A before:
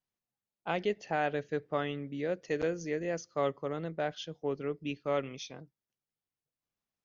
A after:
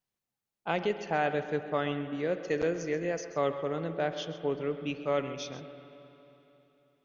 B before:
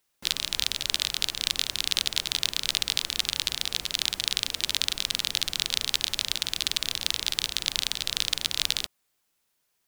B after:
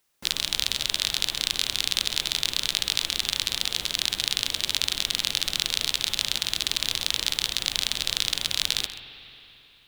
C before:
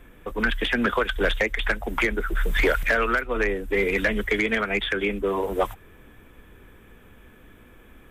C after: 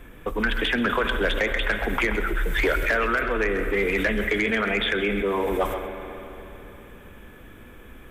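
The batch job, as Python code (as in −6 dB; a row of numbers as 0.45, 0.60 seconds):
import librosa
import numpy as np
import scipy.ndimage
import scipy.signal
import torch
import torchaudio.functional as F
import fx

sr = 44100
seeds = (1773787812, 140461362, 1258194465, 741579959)

p1 = x + 10.0 ** (-14.5 / 20.0) * np.pad(x, (int(132 * sr / 1000.0), 0))[:len(x)]
p2 = fx.rev_spring(p1, sr, rt60_s=3.4, pass_ms=(45, 54), chirp_ms=70, drr_db=10.5)
p3 = fx.over_compress(p2, sr, threshold_db=-29.0, ratio=-1.0)
p4 = p2 + (p3 * librosa.db_to_amplitude(-3.0))
y = p4 * librosa.db_to_amplitude(-2.5)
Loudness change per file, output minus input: +2.5, +1.5, 0.0 LU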